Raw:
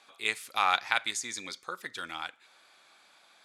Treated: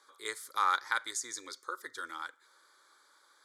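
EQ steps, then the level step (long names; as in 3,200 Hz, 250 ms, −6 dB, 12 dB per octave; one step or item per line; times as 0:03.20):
high-pass filter 250 Hz 6 dB per octave
phaser with its sweep stopped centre 710 Hz, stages 6
0.0 dB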